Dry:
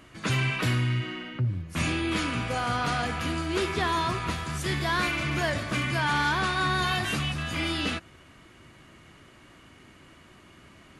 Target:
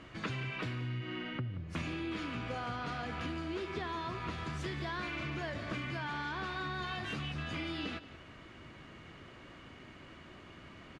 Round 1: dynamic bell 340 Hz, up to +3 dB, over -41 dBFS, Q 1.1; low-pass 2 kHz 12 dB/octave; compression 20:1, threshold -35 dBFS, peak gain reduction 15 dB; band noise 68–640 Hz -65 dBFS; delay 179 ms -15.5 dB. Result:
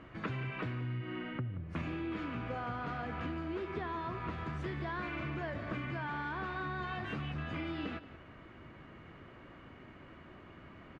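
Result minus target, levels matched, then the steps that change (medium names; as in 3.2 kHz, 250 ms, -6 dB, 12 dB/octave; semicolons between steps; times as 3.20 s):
4 kHz band -7.0 dB
change: low-pass 4.7 kHz 12 dB/octave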